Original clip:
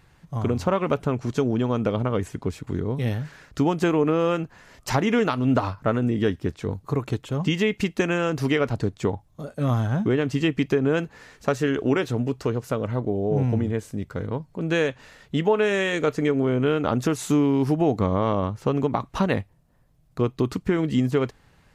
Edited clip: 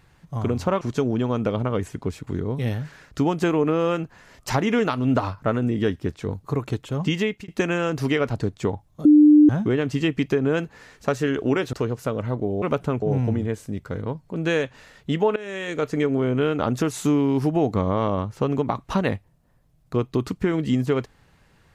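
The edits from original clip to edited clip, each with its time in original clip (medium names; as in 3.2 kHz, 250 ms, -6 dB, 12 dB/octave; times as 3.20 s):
0.81–1.21 s: move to 13.27 s
7.52–7.88 s: fade out equal-power
9.45–9.89 s: bleep 299 Hz -8.5 dBFS
12.13–12.38 s: delete
15.61–16.22 s: fade in, from -18 dB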